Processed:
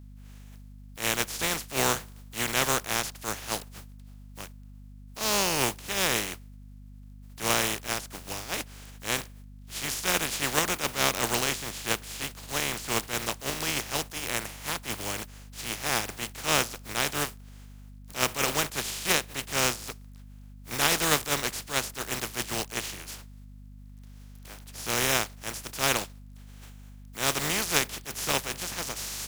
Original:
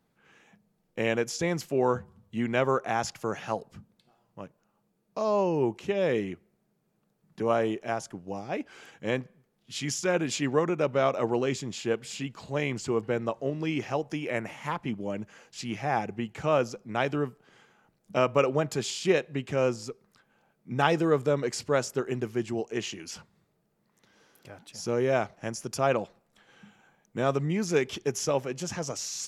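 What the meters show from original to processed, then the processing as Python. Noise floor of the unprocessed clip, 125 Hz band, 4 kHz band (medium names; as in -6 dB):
-73 dBFS, -4.0 dB, +10.0 dB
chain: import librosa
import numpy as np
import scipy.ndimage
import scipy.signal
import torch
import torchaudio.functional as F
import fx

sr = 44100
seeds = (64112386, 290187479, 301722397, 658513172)

y = fx.spec_flatten(x, sr, power=0.25)
y = fx.add_hum(y, sr, base_hz=50, snr_db=16)
y = fx.attack_slew(y, sr, db_per_s=210.0)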